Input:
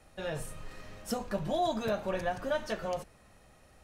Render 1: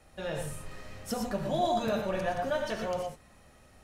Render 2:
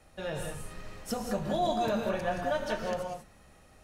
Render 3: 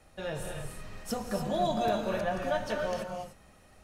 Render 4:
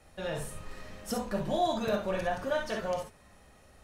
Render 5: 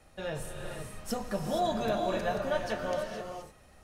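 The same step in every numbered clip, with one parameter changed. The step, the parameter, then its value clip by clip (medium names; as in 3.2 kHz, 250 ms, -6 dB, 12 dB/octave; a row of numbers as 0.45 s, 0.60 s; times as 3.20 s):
gated-style reverb, gate: 140 ms, 220 ms, 320 ms, 80 ms, 500 ms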